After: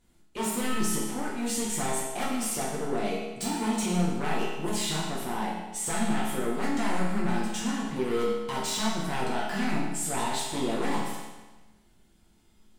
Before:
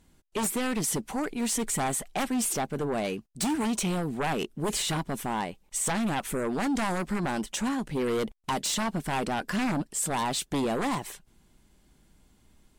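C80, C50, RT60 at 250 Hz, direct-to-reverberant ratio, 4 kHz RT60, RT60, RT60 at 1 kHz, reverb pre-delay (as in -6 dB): 3.5 dB, 1.0 dB, 1.2 s, -6.0 dB, 1.1 s, 1.2 s, 1.2 s, 5 ms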